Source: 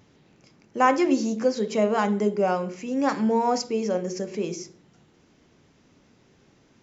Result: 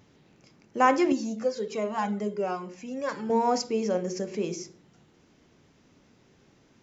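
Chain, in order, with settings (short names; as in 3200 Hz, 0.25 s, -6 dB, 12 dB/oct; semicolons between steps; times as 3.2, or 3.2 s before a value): 1.12–3.3 cascading flanger falling 1.3 Hz; gain -1.5 dB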